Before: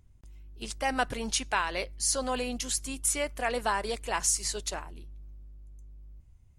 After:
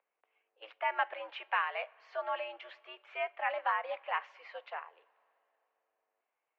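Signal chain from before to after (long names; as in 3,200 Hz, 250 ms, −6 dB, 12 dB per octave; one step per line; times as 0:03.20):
single-sideband voice off tune +100 Hz 470–2,600 Hz
coupled-rooms reverb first 0.31 s, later 3.4 s, from −18 dB, DRR 17.5 dB
level −2.5 dB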